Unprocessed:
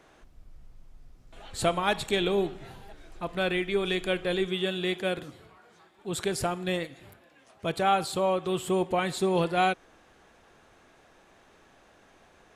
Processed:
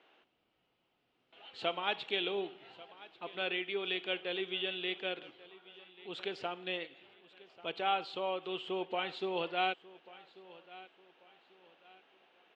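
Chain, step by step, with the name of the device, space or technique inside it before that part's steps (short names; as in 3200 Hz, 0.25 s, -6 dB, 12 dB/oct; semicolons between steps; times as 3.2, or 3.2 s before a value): phone earpiece (speaker cabinet 390–3900 Hz, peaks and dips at 610 Hz -4 dB, 1100 Hz -4 dB, 1700 Hz -4 dB, 2900 Hz +9 dB); feedback echo 1.14 s, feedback 34%, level -19.5 dB; gain -6.5 dB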